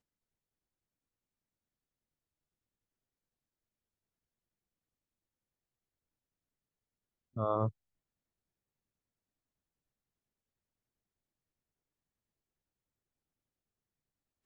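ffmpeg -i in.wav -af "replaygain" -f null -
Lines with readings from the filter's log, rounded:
track_gain = +64.0 dB
track_peak = 0.083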